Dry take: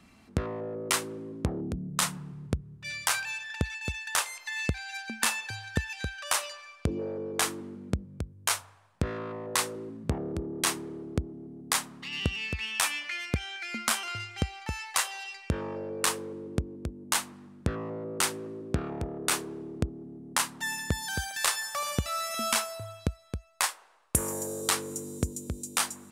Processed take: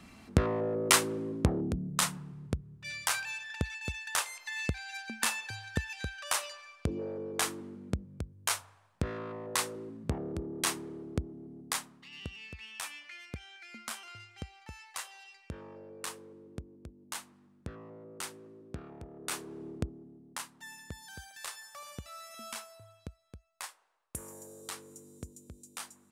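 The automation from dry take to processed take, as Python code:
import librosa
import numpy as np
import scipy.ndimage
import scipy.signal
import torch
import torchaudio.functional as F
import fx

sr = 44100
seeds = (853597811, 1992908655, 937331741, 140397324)

y = fx.gain(x, sr, db=fx.line((1.3, 4.0), (2.27, -3.5), (11.59, -3.5), (12.06, -13.0), (19.08, -13.0), (19.68, -3.0), (20.51, -15.0)))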